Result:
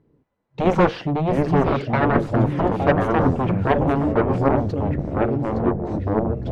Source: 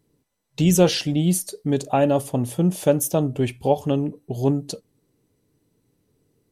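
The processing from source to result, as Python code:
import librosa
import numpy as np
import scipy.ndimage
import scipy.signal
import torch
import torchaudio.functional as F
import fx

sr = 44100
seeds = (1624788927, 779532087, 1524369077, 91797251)

p1 = x + fx.echo_feedback(x, sr, ms=865, feedback_pct=16, wet_db=-11.0, dry=0)
p2 = fx.cheby_harmonics(p1, sr, harmonics=(7,), levels_db=(-6,), full_scale_db=-5.0)
p3 = (np.kron(scipy.signal.resample_poly(p2, 1, 2), np.eye(2)[0]) * 2)[:len(p2)]
p4 = scipy.signal.sosfilt(scipy.signal.butter(2, 1500.0, 'lowpass', fs=sr, output='sos'), p3)
p5 = fx.echo_pitch(p4, sr, ms=542, semitones=-4, count=3, db_per_echo=-3.0)
y = p5 * 10.0 ** (-2.0 / 20.0)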